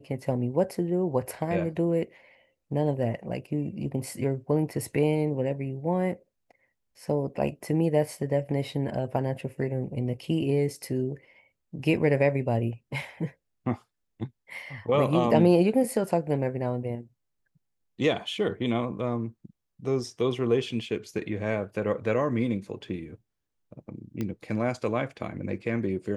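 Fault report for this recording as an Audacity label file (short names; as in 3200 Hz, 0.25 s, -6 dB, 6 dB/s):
24.210000	24.210000	pop -19 dBFS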